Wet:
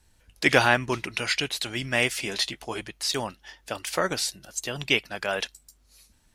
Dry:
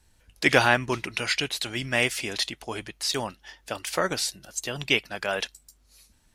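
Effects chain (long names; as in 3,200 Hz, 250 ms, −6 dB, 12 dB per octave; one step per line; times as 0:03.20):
0:02.21–0:02.81: double-tracking delay 15 ms −7 dB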